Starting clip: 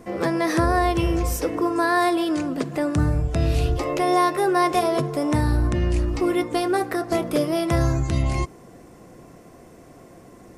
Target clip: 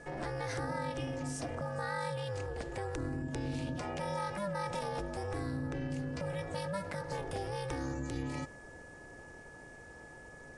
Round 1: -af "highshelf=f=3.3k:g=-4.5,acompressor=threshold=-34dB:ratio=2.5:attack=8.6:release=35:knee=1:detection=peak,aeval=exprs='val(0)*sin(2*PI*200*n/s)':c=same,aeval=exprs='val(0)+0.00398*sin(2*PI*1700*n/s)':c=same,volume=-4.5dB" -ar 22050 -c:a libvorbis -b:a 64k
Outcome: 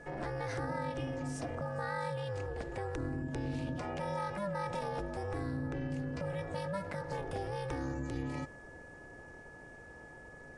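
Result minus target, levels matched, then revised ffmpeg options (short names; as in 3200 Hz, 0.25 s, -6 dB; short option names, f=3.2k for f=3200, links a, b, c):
8000 Hz band -5.5 dB
-af "highshelf=f=3.3k:g=3,acompressor=threshold=-34dB:ratio=2.5:attack=8.6:release=35:knee=1:detection=peak,aeval=exprs='val(0)*sin(2*PI*200*n/s)':c=same,aeval=exprs='val(0)+0.00398*sin(2*PI*1700*n/s)':c=same,volume=-4.5dB" -ar 22050 -c:a libvorbis -b:a 64k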